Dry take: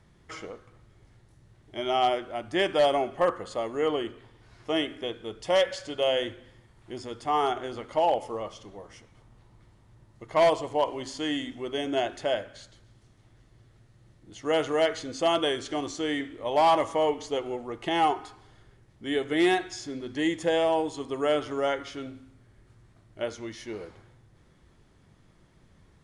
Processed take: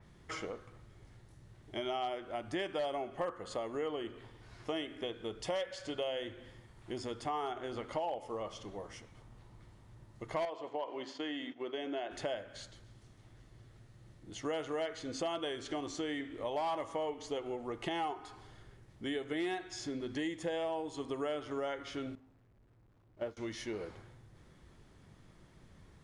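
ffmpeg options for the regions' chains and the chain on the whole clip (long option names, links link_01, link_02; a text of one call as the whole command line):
ffmpeg -i in.wav -filter_complex "[0:a]asettb=1/sr,asplit=3[link_01][link_02][link_03];[link_01]atrim=end=10.454[link_04];[link_02]atrim=start=10.45:end=12.11,asetpts=PTS-STARTPTS,afade=type=in:duration=0.004:curve=qsin,afade=type=out:start_time=1.656:duration=0.004:curve=qsin,agate=range=-33dB:threshold=-37dB:ratio=3:release=100:detection=peak,acompressor=threshold=-35dB:ratio=1.5:attack=3.2:release=140:knee=1:detection=peak,highpass=270,lowpass=3800[link_05];[link_03]atrim=start=12.106[link_06];[link_04][link_05]acrossfade=duration=0.004:curve1=hsin:curve2=qsin[link_07];[link_07][link_06]acrossfade=duration=0.004:curve1=qsin:curve2=hsin,asettb=1/sr,asplit=3[link_08][link_09][link_10];[link_08]atrim=end=22.154[link_11];[link_09]atrim=start=22.15:end=23.37,asetpts=PTS-STARTPTS,afade=type=in:duration=0.004:curve=qsin,afade=type=out:start_time=1.216:duration=0.004:curve=qsin,aeval=exprs='val(0)+0.5*0.015*sgn(val(0))':channel_layout=same,lowpass=frequency=1000:poles=1,agate=range=-33dB:threshold=-29dB:ratio=3:release=100:detection=peak[link_12];[link_10]atrim=start=23.366[link_13];[link_11][link_12]acrossfade=duration=0.004:curve1=hsin:curve2=qsin[link_14];[link_14][link_13]acrossfade=duration=0.004:curve1=qsin:curve2=hsin,acompressor=threshold=-36dB:ratio=4,adynamicequalizer=threshold=0.00224:dfrequency=4200:dqfactor=0.7:tfrequency=4200:tqfactor=0.7:attack=5:release=100:ratio=0.375:range=2:mode=cutabove:tftype=highshelf" out.wav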